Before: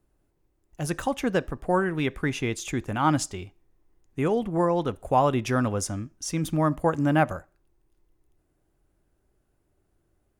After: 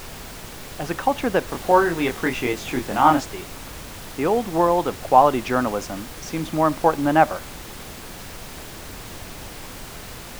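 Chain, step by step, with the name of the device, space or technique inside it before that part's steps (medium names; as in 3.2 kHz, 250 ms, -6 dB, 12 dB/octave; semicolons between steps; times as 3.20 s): horn gramophone (band-pass 220–4100 Hz; peaking EQ 820 Hz +6 dB; wow and flutter 24 cents; pink noise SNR 13 dB); 1.46–3.21 s: doubling 24 ms -3.5 dB; trim +3.5 dB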